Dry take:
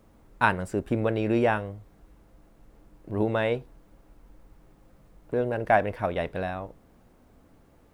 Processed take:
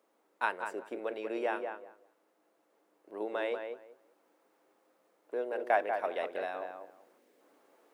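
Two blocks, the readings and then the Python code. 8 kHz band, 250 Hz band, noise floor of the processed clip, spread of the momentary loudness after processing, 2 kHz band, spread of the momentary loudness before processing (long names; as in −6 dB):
can't be measured, −14.5 dB, −74 dBFS, 16 LU, −7.5 dB, 12 LU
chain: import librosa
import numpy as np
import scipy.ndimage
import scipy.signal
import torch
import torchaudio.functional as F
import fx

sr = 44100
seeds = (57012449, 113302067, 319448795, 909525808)

y = fx.echo_filtered(x, sr, ms=191, feedback_pct=19, hz=2000.0, wet_db=-6)
y = fx.spec_box(y, sr, start_s=7.18, length_s=0.23, low_hz=600.0, high_hz=1600.0, gain_db=-8)
y = fx.rider(y, sr, range_db=10, speed_s=2.0)
y = scipy.signal.sosfilt(scipy.signal.butter(4, 350.0, 'highpass', fs=sr, output='sos'), y)
y = y * librosa.db_to_amplitude(-7.5)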